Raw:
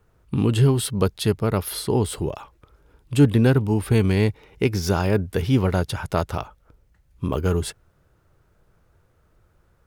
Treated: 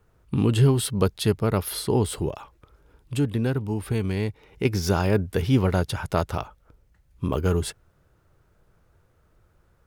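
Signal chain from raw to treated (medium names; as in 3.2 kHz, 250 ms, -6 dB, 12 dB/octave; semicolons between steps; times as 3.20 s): 2.29–4.65 s: compression 1.5:1, threshold -32 dBFS, peak gain reduction 8 dB; trim -1 dB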